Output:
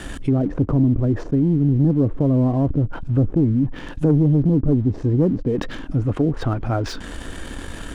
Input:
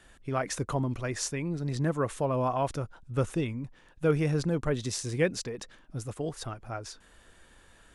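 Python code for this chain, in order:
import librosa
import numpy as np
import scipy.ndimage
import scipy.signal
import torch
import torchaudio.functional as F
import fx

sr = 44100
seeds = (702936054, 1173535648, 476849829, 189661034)

y = fx.env_lowpass_down(x, sr, base_hz=390.0, full_db=-28.5)
y = fx.low_shelf(y, sr, hz=400.0, db=7.5)
y = fx.leveller(y, sr, passes=1)
y = fx.small_body(y, sr, hz=(280.0, 3100.0), ring_ms=45, db=8)
y = fx.env_flatten(y, sr, amount_pct=50)
y = y * 10.0 ** (1.5 / 20.0)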